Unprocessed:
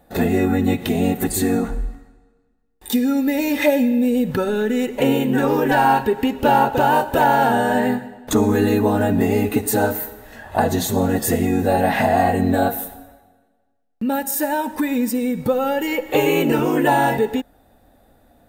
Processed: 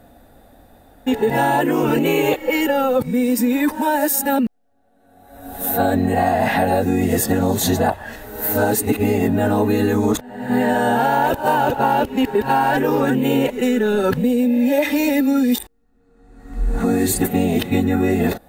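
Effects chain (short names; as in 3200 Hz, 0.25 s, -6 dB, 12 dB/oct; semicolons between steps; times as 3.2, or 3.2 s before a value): whole clip reversed; compressor, threshold -20 dBFS, peak gain reduction 9.5 dB; gain +6 dB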